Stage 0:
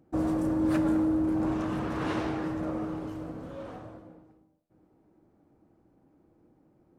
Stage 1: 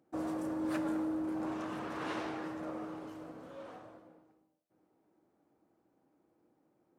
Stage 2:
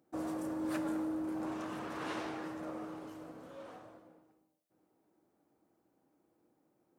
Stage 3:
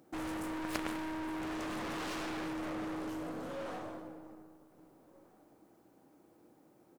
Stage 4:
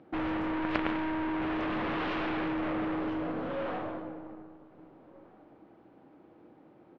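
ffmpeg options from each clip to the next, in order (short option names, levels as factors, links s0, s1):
-af "highpass=f=470:p=1,volume=0.631"
-af "highshelf=f=6500:g=6.5,volume=0.841"
-filter_complex "[0:a]aeval=exprs='0.0631*(cos(1*acos(clip(val(0)/0.0631,-1,1)))-cos(1*PI/2))+0.0141*(cos(6*acos(clip(val(0)/0.0631,-1,1)))-cos(6*PI/2))':c=same,asplit=2[s0][s1];[s1]adelay=1574,volume=0.0562,highshelf=f=4000:g=-35.4[s2];[s0][s2]amix=inputs=2:normalize=0,aeval=exprs='clip(val(0),-1,0.00422)':c=same,volume=3.35"
-af "lowpass=f=3200:w=0.5412,lowpass=f=3200:w=1.3066,volume=2.24"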